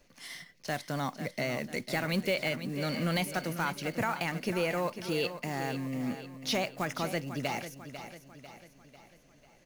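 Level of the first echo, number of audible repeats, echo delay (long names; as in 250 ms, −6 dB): −11.0 dB, 4, 496 ms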